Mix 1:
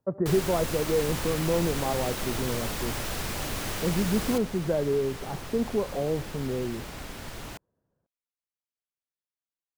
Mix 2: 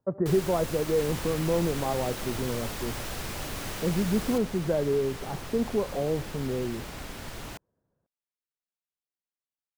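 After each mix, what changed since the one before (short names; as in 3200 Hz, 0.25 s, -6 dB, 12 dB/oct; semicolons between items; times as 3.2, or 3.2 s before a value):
first sound -4.0 dB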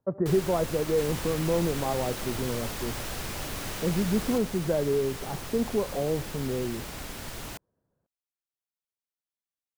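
second sound: add high shelf 5400 Hz +6 dB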